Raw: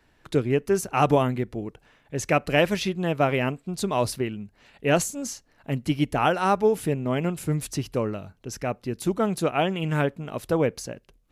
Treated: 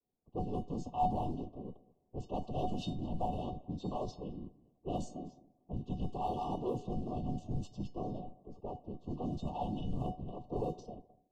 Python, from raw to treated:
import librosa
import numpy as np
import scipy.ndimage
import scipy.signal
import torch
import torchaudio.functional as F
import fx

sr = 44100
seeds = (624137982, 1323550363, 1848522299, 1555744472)

p1 = fx.chord_vocoder(x, sr, chord='bare fifth', root=49)
p2 = fx.transient(p1, sr, attack_db=-1, sustain_db=6)
p3 = fx.leveller(p2, sr, passes=2)
p4 = fx.rev_spring(p3, sr, rt60_s=1.0, pass_ms=(40, 55), chirp_ms=50, drr_db=18.5)
p5 = 10.0 ** (-27.0 / 20.0) * np.tanh(p4 / 10.0 ** (-27.0 / 20.0))
p6 = p4 + (p5 * librosa.db_to_amplitude(-7.5))
p7 = fx.whisperise(p6, sr, seeds[0])
p8 = fx.comb_fb(p7, sr, f0_hz=740.0, decay_s=0.26, harmonics='all', damping=0.0, mix_pct=90)
p9 = p8 + fx.echo_feedback(p8, sr, ms=214, feedback_pct=20, wet_db=-22.5, dry=0)
p10 = fx.env_lowpass(p9, sr, base_hz=740.0, full_db=-28.5)
p11 = fx.brickwall_bandstop(p10, sr, low_hz=1200.0, high_hz=2600.0)
y = p11 * librosa.db_to_amplitude(-2.0)